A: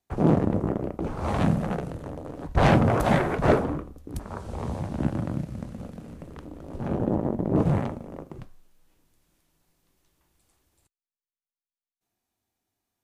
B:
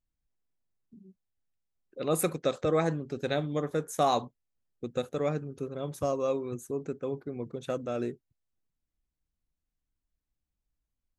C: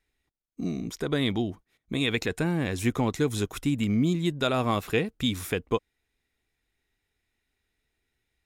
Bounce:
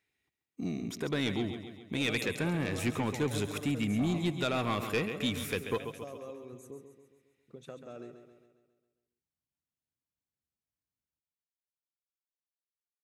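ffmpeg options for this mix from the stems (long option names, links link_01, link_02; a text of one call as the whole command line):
ffmpeg -i stem1.wav -i stem2.wav -i stem3.wav -filter_complex "[1:a]acompressor=threshold=-39dB:ratio=2.5,volume=-6.5dB,asplit=3[link_01][link_02][link_03];[link_01]atrim=end=6.83,asetpts=PTS-STARTPTS,afade=type=out:start_time=6.826:duration=0.004:curve=hsin[link_04];[link_02]atrim=start=6.83:end=7.48,asetpts=PTS-STARTPTS,volume=0[link_05];[link_03]atrim=start=7.48,asetpts=PTS-STARTPTS,afade=type=in:duration=0.004:curve=hsin[link_06];[link_04][link_05][link_06]concat=n=3:v=0:a=1,asplit=2[link_07][link_08];[link_08]volume=-9dB[link_09];[2:a]equalizer=frequency=2400:width_type=o:width=0.76:gain=5,volume=-4dB,asplit=2[link_10][link_11];[link_11]volume=-11dB[link_12];[link_09][link_12]amix=inputs=2:normalize=0,aecho=0:1:136|272|408|544|680|816|952|1088:1|0.53|0.281|0.149|0.0789|0.0418|0.0222|0.0117[link_13];[link_07][link_10][link_13]amix=inputs=3:normalize=0,highpass=frequency=79:width=0.5412,highpass=frequency=79:width=1.3066,asoftclip=type=tanh:threshold=-22.5dB" out.wav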